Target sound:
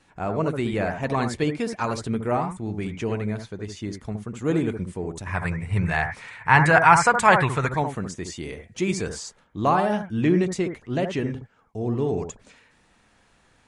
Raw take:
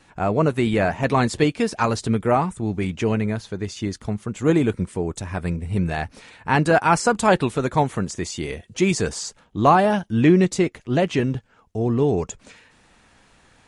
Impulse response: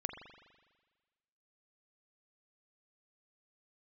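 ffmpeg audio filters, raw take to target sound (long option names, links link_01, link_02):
-filter_complex "[0:a]asettb=1/sr,asplit=3[link_01][link_02][link_03];[link_01]atrim=end=5.264[link_04];[link_02]atrim=start=5.26:end=7.69,asetpts=PTS-STARTPTS,afade=type=in:duration=0.004:curve=qsin,afade=type=out:start_time=2.426:duration=0.004:curve=qsin,equalizer=frequency=125:width_type=o:width=1:gain=10,equalizer=frequency=250:width_type=o:width=1:gain=-6,equalizer=frequency=1000:width_type=o:width=1:gain=8,equalizer=frequency=2000:width_type=o:width=1:gain=12,equalizer=frequency=8000:width_type=o:width=1:gain=5[link_05];[link_03]atrim=start=7.686[link_06];[link_04][link_05]acrossfade=duration=0.004:curve1=hsin:curve2=qsin[link_07];[link_07][link_06]acrossfade=duration=0.004:curve1=qsin:curve2=hsin[link_08];[1:a]atrim=start_sample=2205,atrim=end_sample=3528,asetrate=27342,aresample=44100[link_09];[link_08][link_09]afir=irnorm=-1:irlink=0,volume=-7dB"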